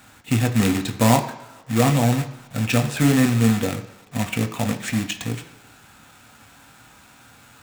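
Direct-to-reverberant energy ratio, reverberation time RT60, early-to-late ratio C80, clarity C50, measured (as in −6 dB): 5.0 dB, non-exponential decay, 14.5 dB, 12.5 dB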